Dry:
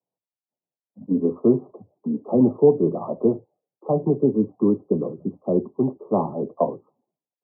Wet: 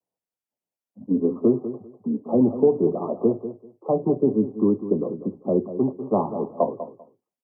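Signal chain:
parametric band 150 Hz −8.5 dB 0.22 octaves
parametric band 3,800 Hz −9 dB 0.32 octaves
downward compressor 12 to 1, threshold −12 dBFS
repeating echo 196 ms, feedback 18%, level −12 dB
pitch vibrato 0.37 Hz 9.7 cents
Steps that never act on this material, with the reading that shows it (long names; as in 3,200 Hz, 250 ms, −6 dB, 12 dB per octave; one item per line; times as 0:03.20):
parametric band 3,800 Hz: nothing at its input above 960 Hz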